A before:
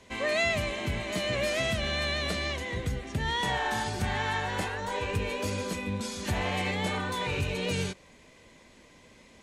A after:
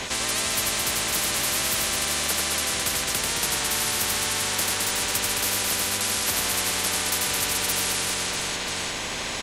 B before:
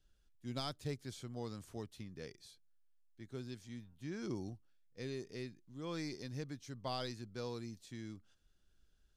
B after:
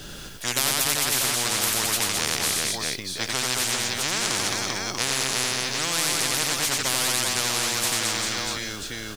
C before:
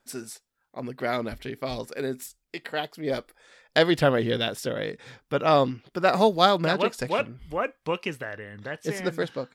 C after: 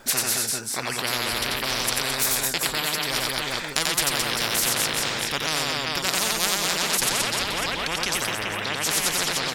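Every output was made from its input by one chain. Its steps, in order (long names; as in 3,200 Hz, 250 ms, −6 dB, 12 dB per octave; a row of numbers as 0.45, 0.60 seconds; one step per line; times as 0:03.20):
reverse bouncing-ball delay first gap 90 ms, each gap 1.4×, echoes 5
every bin compressed towards the loudest bin 10 to 1
loudness normalisation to −23 LKFS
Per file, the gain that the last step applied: +3.5, +24.0, 0.0 decibels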